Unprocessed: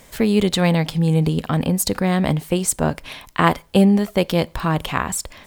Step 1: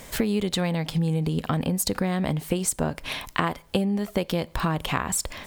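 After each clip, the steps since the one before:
downward compressor 12 to 1, threshold −25 dBFS, peak gain reduction 16.5 dB
level +4 dB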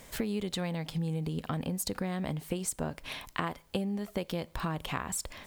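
bit-depth reduction 10 bits, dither none
level −8.5 dB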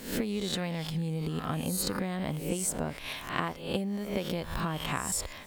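peak hold with a rise ahead of every peak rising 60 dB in 0.54 s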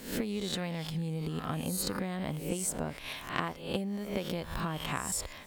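harmonic generator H 3 −22 dB, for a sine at −12 dBFS

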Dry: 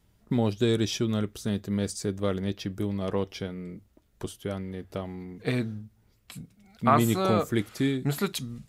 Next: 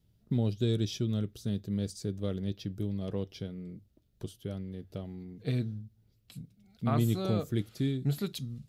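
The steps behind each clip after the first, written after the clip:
octave-band graphic EQ 125/1,000/2,000/4,000/8,000 Hz +7/−9/−6/+3/−5 dB
level −6.5 dB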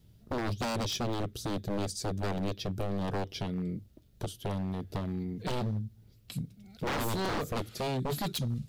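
in parallel at −1 dB: downward compressor, threshold −38 dBFS, peak gain reduction 14.5 dB
on the sum: wave folding −30 dBFS
level +3.5 dB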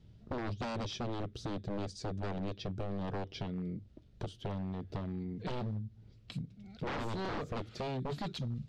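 downward compressor 2 to 1, threshold −41 dBFS, peak gain reduction 6.5 dB
high-frequency loss of the air 130 metres
level +1.5 dB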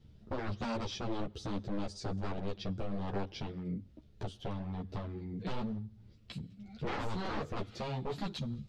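on a send at −24 dB: convolution reverb, pre-delay 3 ms
on the sum: string-ensemble chorus
level +3.5 dB

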